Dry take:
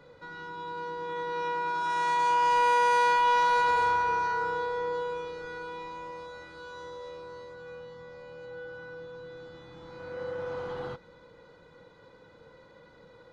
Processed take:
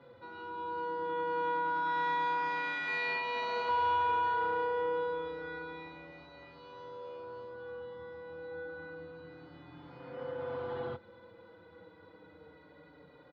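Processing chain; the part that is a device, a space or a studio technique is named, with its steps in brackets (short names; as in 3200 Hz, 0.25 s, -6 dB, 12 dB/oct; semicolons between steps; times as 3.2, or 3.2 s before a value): barber-pole flanger into a guitar amplifier (endless flanger 5.4 ms -0.28 Hz; soft clip -25.5 dBFS, distortion -18 dB; speaker cabinet 84–4000 Hz, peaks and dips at 85 Hz +8 dB, 290 Hz +8 dB, 720 Hz +4 dB); 2.87–3.69 comb 4.6 ms, depth 65%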